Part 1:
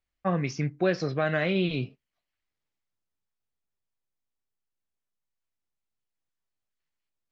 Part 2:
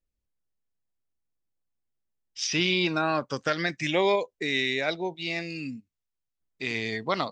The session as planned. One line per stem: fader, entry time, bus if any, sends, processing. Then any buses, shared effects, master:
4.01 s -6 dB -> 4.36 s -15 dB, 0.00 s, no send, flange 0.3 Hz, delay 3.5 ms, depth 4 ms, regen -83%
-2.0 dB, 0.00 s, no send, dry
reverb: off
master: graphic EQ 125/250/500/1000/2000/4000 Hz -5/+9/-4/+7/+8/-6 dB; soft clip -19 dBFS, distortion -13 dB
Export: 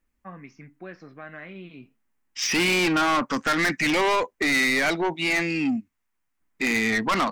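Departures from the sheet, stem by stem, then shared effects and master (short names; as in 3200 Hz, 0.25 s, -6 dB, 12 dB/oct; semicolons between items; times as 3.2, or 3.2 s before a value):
stem 1 -6.0 dB -> -13.5 dB; stem 2 -2.0 dB -> +8.0 dB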